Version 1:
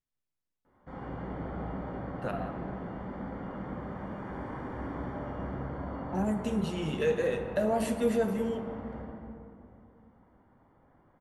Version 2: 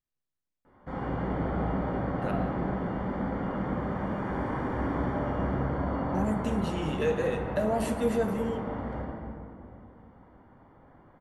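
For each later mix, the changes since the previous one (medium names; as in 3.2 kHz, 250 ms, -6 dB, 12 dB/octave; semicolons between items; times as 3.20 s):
background +7.5 dB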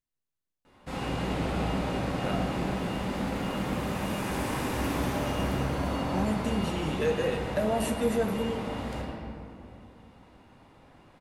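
background: remove Savitzky-Golay filter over 41 samples; master: add treble shelf 8.4 kHz +8.5 dB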